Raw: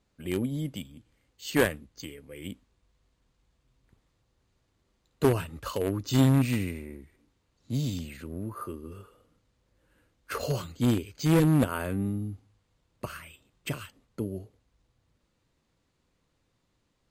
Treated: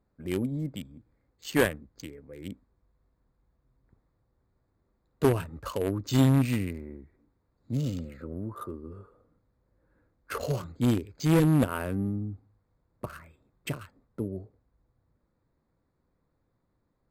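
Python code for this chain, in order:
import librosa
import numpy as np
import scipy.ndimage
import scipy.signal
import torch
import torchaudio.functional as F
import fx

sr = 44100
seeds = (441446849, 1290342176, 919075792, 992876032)

y = fx.wiener(x, sr, points=15)
y = fx.small_body(y, sr, hz=(520.0, 1300.0, 2900.0), ring_ms=45, db=12, at=(7.76, 8.33))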